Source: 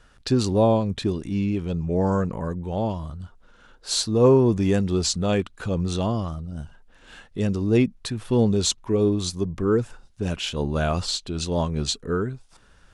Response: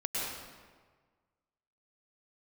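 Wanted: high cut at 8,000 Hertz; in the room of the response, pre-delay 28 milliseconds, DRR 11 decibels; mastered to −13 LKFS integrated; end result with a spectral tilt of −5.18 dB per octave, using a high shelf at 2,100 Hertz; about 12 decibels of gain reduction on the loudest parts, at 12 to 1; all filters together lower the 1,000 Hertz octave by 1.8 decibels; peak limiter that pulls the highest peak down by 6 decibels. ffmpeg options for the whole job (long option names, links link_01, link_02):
-filter_complex "[0:a]lowpass=8000,equalizer=frequency=1000:width_type=o:gain=-3.5,highshelf=frequency=2100:gain=5.5,acompressor=threshold=-24dB:ratio=12,alimiter=limit=-20.5dB:level=0:latency=1,asplit=2[link_01][link_02];[1:a]atrim=start_sample=2205,adelay=28[link_03];[link_02][link_03]afir=irnorm=-1:irlink=0,volume=-17dB[link_04];[link_01][link_04]amix=inputs=2:normalize=0,volume=17.5dB"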